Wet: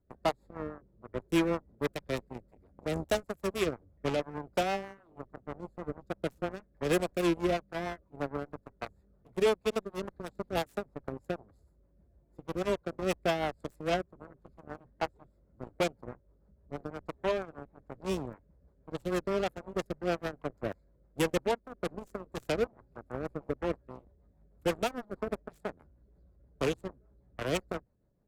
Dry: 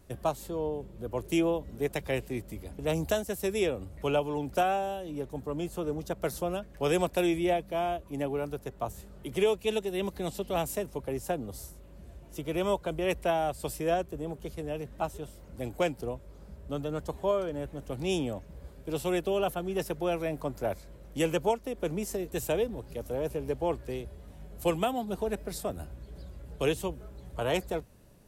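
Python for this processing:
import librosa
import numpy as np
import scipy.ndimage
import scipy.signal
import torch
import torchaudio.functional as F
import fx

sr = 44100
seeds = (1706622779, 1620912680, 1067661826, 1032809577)

y = fx.wiener(x, sr, points=15)
y = fx.cheby_harmonics(y, sr, harmonics=(5, 7), levels_db=(-28, -14), full_scale_db=-16.5)
y = fx.rotary(y, sr, hz=6.3)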